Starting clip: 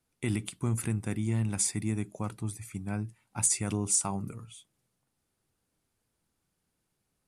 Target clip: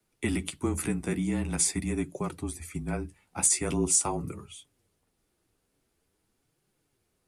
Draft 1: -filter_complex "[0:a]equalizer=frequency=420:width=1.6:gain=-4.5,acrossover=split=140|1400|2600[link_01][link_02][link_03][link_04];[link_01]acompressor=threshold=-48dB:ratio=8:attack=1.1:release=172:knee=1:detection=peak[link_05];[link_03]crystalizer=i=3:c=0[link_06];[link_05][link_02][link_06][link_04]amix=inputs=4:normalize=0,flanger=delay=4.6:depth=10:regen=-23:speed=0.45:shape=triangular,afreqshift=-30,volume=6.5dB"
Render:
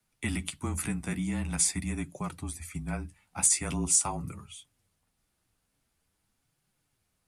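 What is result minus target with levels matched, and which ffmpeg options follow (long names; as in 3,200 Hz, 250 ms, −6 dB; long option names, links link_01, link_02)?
500 Hz band −8.0 dB
-filter_complex "[0:a]equalizer=frequency=420:width=1.6:gain=6.5,acrossover=split=140|1400|2600[link_01][link_02][link_03][link_04];[link_01]acompressor=threshold=-48dB:ratio=8:attack=1.1:release=172:knee=1:detection=peak[link_05];[link_03]crystalizer=i=3:c=0[link_06];[link_05][link_02][link_06][link_04]amix=inputs=4:normalize=0,flanger=delay=4.6:depth=10:regen=-23:speed=0.45:shape=triangular,afreqshift=-30,volume=6.5dB"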